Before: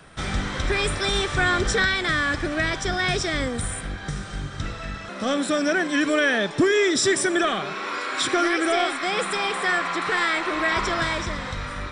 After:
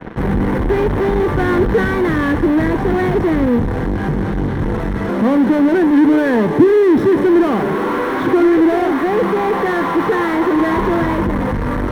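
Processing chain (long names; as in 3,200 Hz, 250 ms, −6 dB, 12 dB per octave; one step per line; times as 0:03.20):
Bessel low-pass filter 790 Hz, order 2
in parallel at −8 dB: fuzz pedal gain 51 dB, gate −48 dBFS
on the sum: convolution reverb RT60 0.15 s, pre-delay 3 ms, DRR 13.5 dB
level −9.5 dB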